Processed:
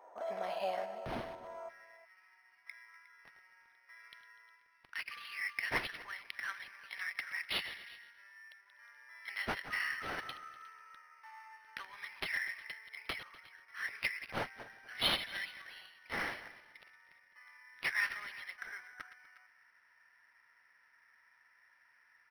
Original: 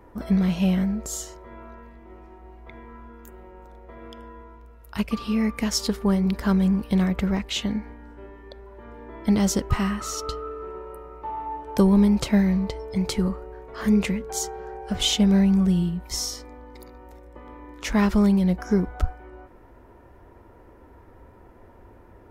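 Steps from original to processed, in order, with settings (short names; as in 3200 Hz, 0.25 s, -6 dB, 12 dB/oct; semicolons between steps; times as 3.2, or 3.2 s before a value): regenerating reverse delay 0.123 s, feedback 43%, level -13 dB; ladder high-pass 610 Hz, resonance 65%, from 1.68 s 1700 Hz; speakerphone echo 0.36 s, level -17 dB; decimation joined by straight lines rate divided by 6×; gain +3.5 dB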